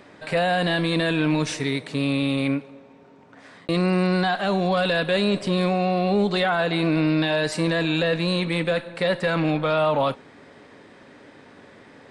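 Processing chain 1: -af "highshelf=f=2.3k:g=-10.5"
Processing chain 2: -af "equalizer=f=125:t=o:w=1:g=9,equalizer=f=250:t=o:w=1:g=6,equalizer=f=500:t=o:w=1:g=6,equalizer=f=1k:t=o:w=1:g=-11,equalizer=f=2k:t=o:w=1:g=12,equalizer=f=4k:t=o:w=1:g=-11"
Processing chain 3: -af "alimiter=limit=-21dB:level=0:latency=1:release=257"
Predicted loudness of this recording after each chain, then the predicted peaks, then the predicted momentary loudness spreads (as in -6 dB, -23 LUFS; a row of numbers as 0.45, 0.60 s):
-23.5, -17.0, -30.5 LUFS; -13.0, -5.5, -21.0 dBFS; 5, 5, 19 LU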